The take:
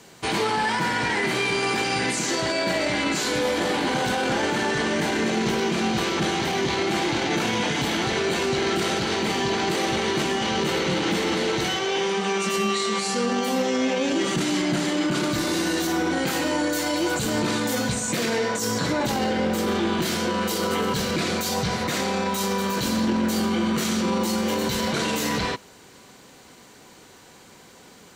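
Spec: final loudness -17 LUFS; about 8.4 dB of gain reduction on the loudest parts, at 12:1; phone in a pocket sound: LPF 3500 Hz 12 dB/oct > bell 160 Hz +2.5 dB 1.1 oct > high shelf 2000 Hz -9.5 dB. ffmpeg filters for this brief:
-af "acompressor=threshold=-28dB:ratio=12,lowpass=3.5k,equalizer=f=160:t=o:w=1.1:g=2.5,highshelf=f=2k:g=-9.5,volume=16dB"

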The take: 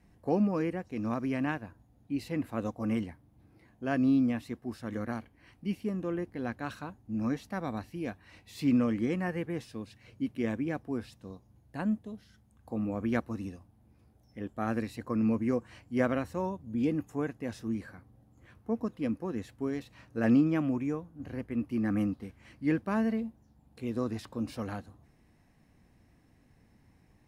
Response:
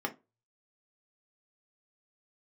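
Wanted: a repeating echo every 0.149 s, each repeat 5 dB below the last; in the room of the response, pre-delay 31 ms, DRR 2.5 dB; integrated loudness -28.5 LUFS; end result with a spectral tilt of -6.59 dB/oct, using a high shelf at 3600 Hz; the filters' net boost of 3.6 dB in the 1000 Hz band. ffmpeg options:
-filter_complex "[0:a]equalizer=f=1k:t=o:g=4,highshelf=f=3.6k:g=8.5,aecho=1:1:149|298|447|596|745|894|1043:0.562|0.315|0.176|0.0988|0.0553|0.031|0.0173,asplit=2[a][b];[1:a]atrim=start_sample=2205,adelay=31[c];[b][c]afir=irnorm=-1:irlink=0,volume=-7.5dB[d];[a][d]amix=inputs=2:normalize=0,volume=-0.5dB"

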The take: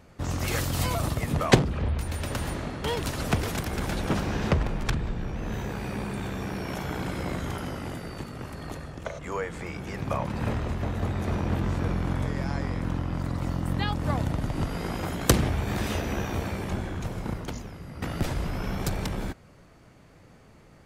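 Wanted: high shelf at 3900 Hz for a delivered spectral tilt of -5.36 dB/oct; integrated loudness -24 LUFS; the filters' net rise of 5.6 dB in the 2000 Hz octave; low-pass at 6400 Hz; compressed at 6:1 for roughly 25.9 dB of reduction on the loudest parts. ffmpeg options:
-af "lowpass=6.4k,equalizer=f=2k:t=o:g=6,highshelf=f=3.9k:g=4,acompressor=threshold=-41dB:ratio=6,volume=20dB"

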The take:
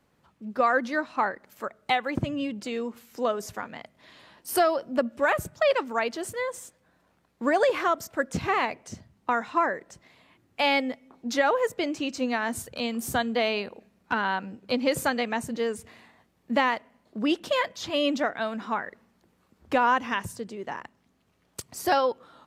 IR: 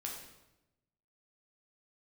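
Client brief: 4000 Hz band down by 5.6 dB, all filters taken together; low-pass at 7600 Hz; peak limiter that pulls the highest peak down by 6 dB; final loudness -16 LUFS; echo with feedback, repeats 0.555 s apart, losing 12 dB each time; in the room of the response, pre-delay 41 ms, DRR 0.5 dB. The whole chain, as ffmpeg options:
-filter_complex "[0:a]lowpass=7.6k,equalizer=f=4k:t=o:g=-8,alimiter=limit=-18dB:level=0:latency=1,aecho=1:1:555|1110|1665:0.251|0.0628|0.0157,asplit=2[a][b];[1:a]atrim=start_sample=2205,adelay=41[c];[b][c]afir=irnorm=-1:irlink=0,volume=0dB[d];[a][d]amix=inputs=2:normalize=0,volume=11.5dB"

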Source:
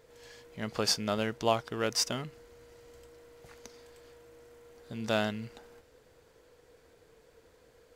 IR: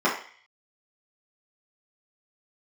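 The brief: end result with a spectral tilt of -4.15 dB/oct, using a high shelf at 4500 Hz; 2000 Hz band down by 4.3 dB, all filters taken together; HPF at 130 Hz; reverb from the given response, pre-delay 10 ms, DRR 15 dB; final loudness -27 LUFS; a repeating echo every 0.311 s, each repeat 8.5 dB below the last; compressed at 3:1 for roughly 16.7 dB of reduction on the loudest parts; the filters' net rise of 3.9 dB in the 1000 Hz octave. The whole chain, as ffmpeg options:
-filter_complex "[0:a]highpass=130,equalizer=f=1k:t=o:g=8,equalizer=f=2k:t=o:g=-9,highshelf=f=4.5k:g=-8,acompressor=threshold=-41dB:ratio=3,aecho=1:1:311|622|933|1244:0.376|0.143|0.0543|0.0206,asplit=2[a][b];[1:a]atrim=start_sample=2205,adelay=10[c];[b][c]afir=irnorm=-1:irlink=0,volume=-31.5dB[d];[a][d]amix=inputs=2:normalize=0,volume=19dB"

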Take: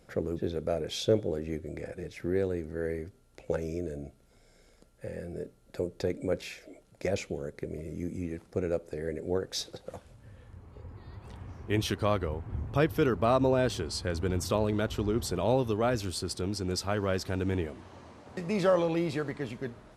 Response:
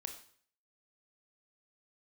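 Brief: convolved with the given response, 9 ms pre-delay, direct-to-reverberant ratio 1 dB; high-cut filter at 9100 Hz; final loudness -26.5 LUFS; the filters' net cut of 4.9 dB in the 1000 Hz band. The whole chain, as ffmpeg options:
-filter_complex "[0:a]lowpass=9.1k,equalizer=f=1k:t=o:g=-7,asplit=2[a][b];[1:a]atrim=start_sample=2205,adelay=9[c];[b][c]afir=irnorm=-1:irlink=0,volume=1.5dB[d];[a][d]amix=inputs=2:normalize=0,volume=3.5dB"

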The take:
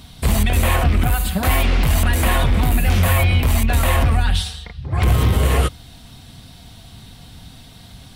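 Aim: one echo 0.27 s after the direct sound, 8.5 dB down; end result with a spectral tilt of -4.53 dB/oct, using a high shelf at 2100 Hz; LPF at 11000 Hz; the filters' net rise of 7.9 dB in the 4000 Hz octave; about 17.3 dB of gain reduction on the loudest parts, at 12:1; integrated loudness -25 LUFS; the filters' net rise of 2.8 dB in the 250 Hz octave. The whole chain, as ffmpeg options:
-af "lowpass=11k,equalizer=f=250:t=o:g=3.5,highshelf=f=2.1k:g=4.5,equalizer=f=4k:t=o:g=6,acompressor=threshold=-29dB:ratio=12,aecho=1:1:270:0.376,volume=8dB"

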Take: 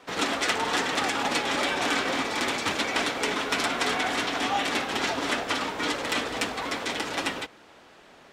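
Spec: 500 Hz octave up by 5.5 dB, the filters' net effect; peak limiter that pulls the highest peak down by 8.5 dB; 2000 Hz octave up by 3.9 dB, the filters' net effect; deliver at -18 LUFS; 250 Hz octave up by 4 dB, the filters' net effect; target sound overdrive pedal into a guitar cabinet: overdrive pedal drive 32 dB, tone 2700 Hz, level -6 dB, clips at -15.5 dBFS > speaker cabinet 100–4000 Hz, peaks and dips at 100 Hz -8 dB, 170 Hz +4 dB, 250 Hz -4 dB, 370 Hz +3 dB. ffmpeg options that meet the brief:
-filter_complex "[0:a]equalizer=f=250:t=o:g=4.5,equalizer=f=500:t=o:g=4.5,equalizer=f=2k:t=o:g=4.5,alimiter=limit=-15.5dB:level=0:latency=1,asplit=2[a][b];[b]highpass=f=720:p=1,volume=32dB,asoftclip=type=tanh:threshold=-15.5dB[c];[a][c]amix=inputs=2:normalize=0,lowpass=f=2.7k:p=1,volume=-6dB,highpass=100,equalizer=f=100:t=q:w=4:g=-8,equalizer=f=170:t=q:w=4:g=4,equalizer=f=250:t=q:w=4:g=-4,equalizer=f=370:t=q:w=4:g=3,lowpass=f=4k:w=0.5412,lowpass=f=4k:w=1.3066,volume=3.5dB"

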